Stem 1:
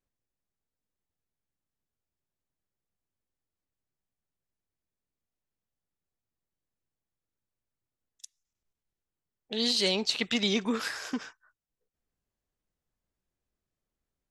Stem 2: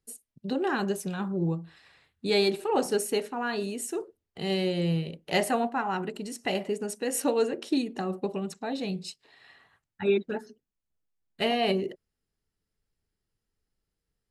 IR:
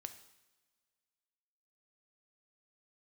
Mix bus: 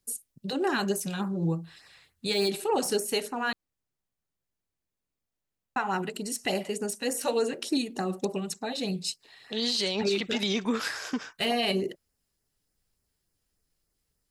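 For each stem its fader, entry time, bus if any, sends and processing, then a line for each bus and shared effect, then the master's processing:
+2.0 dB, 0.00 s, no send, no processing
+1.0 dB, 0.00 s, muted 0:03.53–0:05.76, no send, de-essing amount 75%; high-shelf EQ 3,300 Hz +10.5 dB; auto-filter notch sine 3.4 Hz 260–3,600 Hz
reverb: not used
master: brickwall limiter −17.5 dBFS, peak gain reduction 10 dB

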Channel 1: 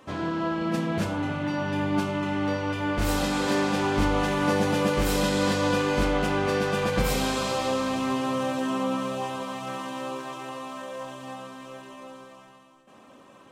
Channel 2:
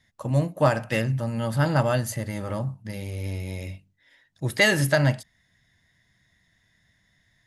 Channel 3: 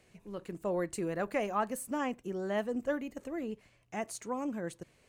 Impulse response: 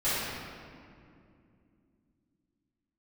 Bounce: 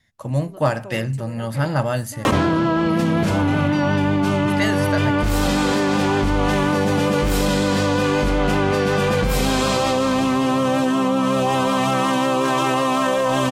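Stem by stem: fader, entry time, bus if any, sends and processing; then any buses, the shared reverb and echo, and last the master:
−0.5 dB, 2.25 s, no send, low-shelf EQ 200 Hz +4.5 dB; envelope flattener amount 100%
−4.0 dB, 0.00 s, no send, no processing
−1.0 dB, 0.20 s, no send, automatic ducking −10 dB, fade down 1.20 s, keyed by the second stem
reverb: not used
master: pitch vibrato 5.4 Hz 28 cents; speech leveller within 5 dB 0.5 s

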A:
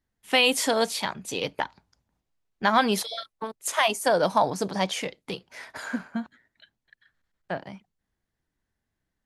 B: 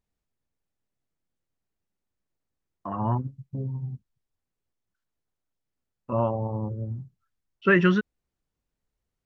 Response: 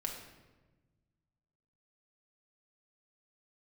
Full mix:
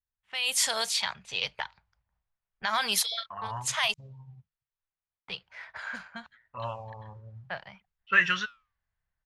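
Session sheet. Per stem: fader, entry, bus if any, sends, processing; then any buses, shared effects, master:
−6.0 dB, 0.00 s, muted 0:03.94–0:05.28, no send, brickwall limiter −14.5 dBFS, peak gain reduction 7.5 dB
−3.0 dB, 0.45 s, no send, spectral tilt +2 dB per octave; flanger 0.53 Hz, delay 4 ms, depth 8.2 ms, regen +84%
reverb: not used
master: low-pass that shuts in the quiet parts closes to 1,400 Hz, open at −27 dBFS; guitar amp tone stack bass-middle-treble 10-0-10; automatic gain control gain up to 12 dB

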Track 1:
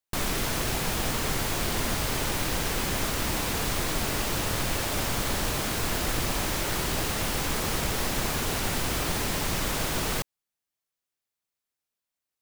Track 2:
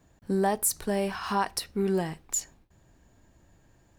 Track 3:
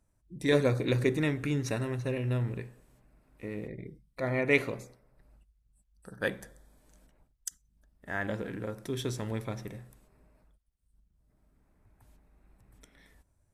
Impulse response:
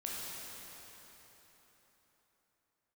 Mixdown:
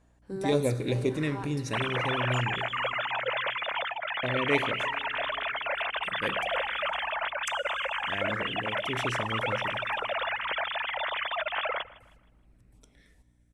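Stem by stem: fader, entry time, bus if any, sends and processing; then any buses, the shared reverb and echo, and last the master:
−3.5 dB, 1.60 s, no send, echo send −20 dB, three sine waves on the formant tracks; notch filter 760 Hz, Q 12
−2.0 dB, 0.00 s, send −23.5 dB, no echo send, bass and treble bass −12 dB, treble −7 dB; automatic ducking −13 dB, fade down 1.05 s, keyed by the third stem
−1.5 dB, 0.00 s, muted 0:02.97–0:04.23, send −15 dB, no echo send, auto-filter notch sine 2.2 Hz 830–1,900 Hz; mains hum 60 Hz, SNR 29 dB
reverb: on, RT60 4.1 s, pre-delay 12 ms
echo: repeating echo 157 ms, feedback 37%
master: low-pass filter 11,000 Hz 24 dB per octave

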